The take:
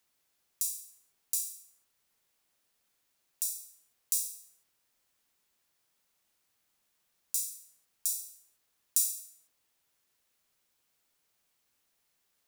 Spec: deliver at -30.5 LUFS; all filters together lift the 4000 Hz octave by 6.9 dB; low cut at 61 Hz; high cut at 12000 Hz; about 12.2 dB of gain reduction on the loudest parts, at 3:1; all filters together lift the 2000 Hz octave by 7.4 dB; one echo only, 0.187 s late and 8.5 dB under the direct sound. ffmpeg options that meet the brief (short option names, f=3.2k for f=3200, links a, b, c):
-af "highpass=61,lowpass=12k,equalizer=f=2k:t=o:g=6,equalizer=f=4k:t=o:g=9,acompressor=threshold=-39dB:ratio=3,aecho=1:1:187:0.376,volume=12dB"